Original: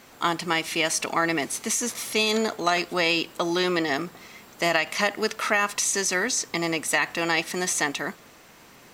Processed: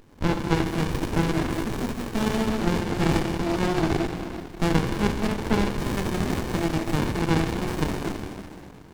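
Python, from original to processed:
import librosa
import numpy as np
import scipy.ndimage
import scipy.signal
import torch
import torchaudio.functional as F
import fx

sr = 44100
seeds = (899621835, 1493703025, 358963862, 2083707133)

y = fx.rev_plate(x, sr, seeds[0], rt60_s=2.3, hf_ratio=0.85, predelay_ms=0, drr_db=-3.0)
y = fx.running_max(y, sr, window=65)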